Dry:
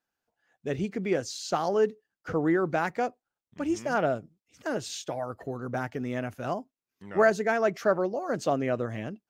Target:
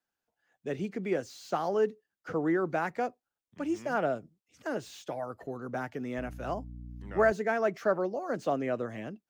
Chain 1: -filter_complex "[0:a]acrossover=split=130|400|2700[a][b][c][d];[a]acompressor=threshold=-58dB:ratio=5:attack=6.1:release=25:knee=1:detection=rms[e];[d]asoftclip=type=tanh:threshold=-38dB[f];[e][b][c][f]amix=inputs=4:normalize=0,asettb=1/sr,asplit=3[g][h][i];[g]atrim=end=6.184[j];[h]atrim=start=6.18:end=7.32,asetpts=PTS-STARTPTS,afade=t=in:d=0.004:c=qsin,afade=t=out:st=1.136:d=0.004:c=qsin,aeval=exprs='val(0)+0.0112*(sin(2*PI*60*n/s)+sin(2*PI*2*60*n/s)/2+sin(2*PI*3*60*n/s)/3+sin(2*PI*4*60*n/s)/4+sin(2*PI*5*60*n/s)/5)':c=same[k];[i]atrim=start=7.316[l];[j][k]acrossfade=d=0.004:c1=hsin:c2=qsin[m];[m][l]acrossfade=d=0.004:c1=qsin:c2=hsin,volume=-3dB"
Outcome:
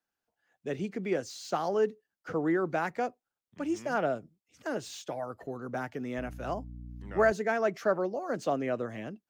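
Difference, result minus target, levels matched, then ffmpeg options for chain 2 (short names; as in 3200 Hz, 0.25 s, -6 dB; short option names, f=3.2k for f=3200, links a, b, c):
soft clip: distortion -7 dB
-filter_complex "[0:a]acrossover=split=130|400|2700[a][b][c][d];[a]acompressor=threshold=-58dB:ratio=5:attack=6.1:release=25:knee=1:detection=rms[e];[d]asoftclip=type=tanh:threshold=-47dB[f];[e][b][c][f]amix=inputs=4:normalize=0,asettb=1/sr,asplit=3[g][h][i];[g]atrim=end=6.184[j];[h]atrim=start=6.18:end=7.32,asetpts=PTS-STARTPTS,afade=t=in:d=0.004:c=qsin,afade=t=out:st=1.136:d=0.004:c=qsin,aeval=exprs='val(0)+0.0112*(sin(2*PI*60*n/s)+sin(2*PI*2*60*n/s)/2+sin(2*PI*3*60*n/s)/3+sin(2*PI*4*60*n/s)/4+sin(2*PI*5*60*n/s)/5)':c=same[k];[i]atrim=start=7.316[l];[j][k]acrossfade=d=0.004:c1=hsin:c2=qsin[m];[m][l]acrossfade=d=0.004:c1=qsin:c2=hsin,volume=-3dB"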